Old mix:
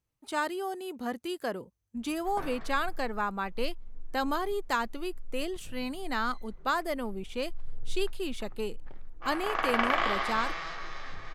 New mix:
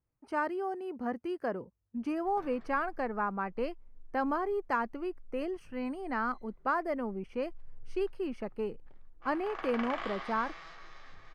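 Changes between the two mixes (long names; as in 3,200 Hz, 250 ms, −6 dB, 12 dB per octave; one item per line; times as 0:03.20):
speech: add moving average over 12 samples
background −11.5 dB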